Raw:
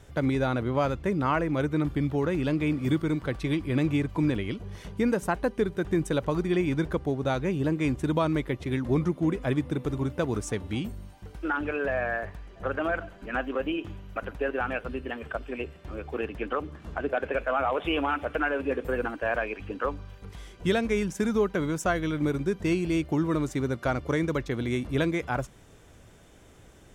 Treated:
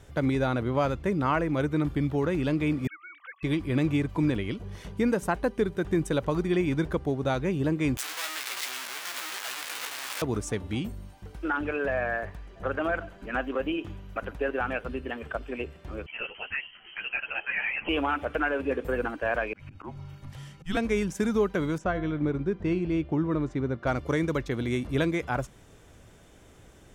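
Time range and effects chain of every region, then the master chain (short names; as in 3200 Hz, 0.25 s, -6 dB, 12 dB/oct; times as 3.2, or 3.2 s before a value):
2.87–3.43 sine-wave speech + HPF 1100 Hz 24 dB/oct
7.97–10.22 infinite clipping + HPF 1500 Hz + doubler 16 ms -5 dB
16.06–17.89 tilt +2.5 dB/oct + inverted band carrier 3100 Hz + ensemble effect
19.53–20.77 auto swell 0.185 s + frequency shift -190 Hz
21.78–23.87 tape spacing loss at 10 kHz 24 dB + de-hum 344.8 Hz, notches 12
whole clip: dry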